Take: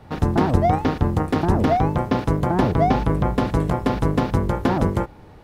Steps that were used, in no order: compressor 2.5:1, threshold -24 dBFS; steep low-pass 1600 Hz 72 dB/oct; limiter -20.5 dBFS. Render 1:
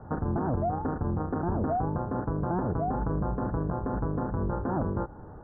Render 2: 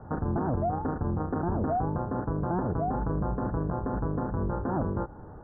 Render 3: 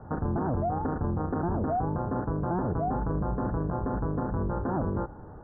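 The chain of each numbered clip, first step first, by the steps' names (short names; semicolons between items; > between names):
steep low-pass > compressor > limiter; compressor > limiter > steep low-pass; limiter > steep low-pass > compressor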